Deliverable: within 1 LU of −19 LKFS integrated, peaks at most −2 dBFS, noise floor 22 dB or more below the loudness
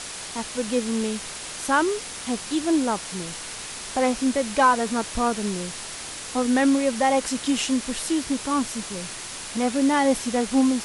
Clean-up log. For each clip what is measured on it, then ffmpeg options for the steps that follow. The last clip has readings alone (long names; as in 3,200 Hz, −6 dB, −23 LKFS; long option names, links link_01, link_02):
background noise floor −36 dBFS; target noise floor −47 dBFS; integrated loudness −24.5 LKFS; sample peak −7.0 dBFS; target loudness −19.0 LKFS
→ -af "afftdn=noise_reduction=11:noise_floor=-36"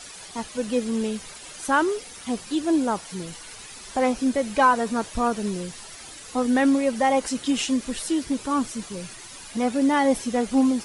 background noise floor −42 dBFS; target noise floor −46 dBFS
→ -af "afftdn=noise_reduction=6:noise_floor=-42"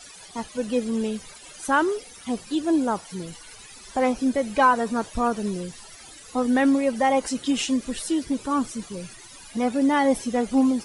background noise floor −45 dBFS; target noise floor −46 dBFS
→ -af "afftdn=noise_reduction=6:noise_floor=-45"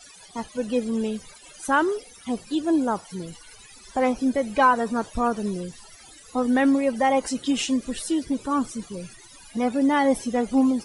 background noise floor −48 dBFS; integrated loudness −24.0 LKFS; sample peak −7.5 dBFS; target loudness −19.0 LKFS
→ -af "volume=5dB"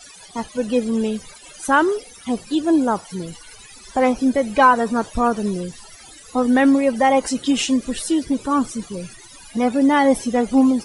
integrated loudness −19.0 LKFS; sample peak −2.5 dBFS; background noise floor −43 dBFS